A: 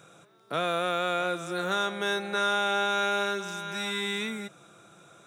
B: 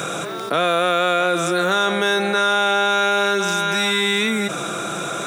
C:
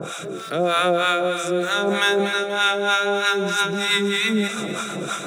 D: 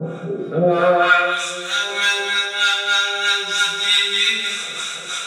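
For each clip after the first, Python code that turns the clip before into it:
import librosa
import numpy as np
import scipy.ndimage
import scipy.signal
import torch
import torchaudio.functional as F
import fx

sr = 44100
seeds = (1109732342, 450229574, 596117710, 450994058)

y1 = scipy.signal.sosfilt(scipy.signal.butter(2, 170.0, 'highpass', fs=sr, output='sos'), x)
y1 = fx.notch(y1, sr, hz=870.0, q=28.0)
y1 = fx.env_flatten(y1, sr, amount_pct=70)
y1 = y1 * librosa.db_to_amplitude(8.0)
y2 = fx.rotary_switch(y1, sr, hz=0.85, then_hz=6.0, switch_at_s=2.21)
y2 = fx.harmonic_tremolo(y2, sr, hz=3.2, depth_pct=100, crossover_hz=800.0)
y2 = fx.echo_feedback(y2, sr, ms=241, feedback_pct=53, wet_db=-11.0)
y2 = y2 * librosa.db_to_amplitude(4.5)
y3 = np.clip(y2, -10.0 ** (-13.0 / 20.0), 10.0 ** (-13.0 / 20.0))
y3 = fx.filter_sweep_bandpass(y3, sr, from_hz=260.0, to_hz=4300.0, start_s=0.57, end_s=1.43, q=0.94)
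y3 = fx.rev_fdn(y3, sr, rt60_s=0.87, lf_ratio=1.0, hf_ratio=0.85, size_ms=37.0, drr_db=-8.0)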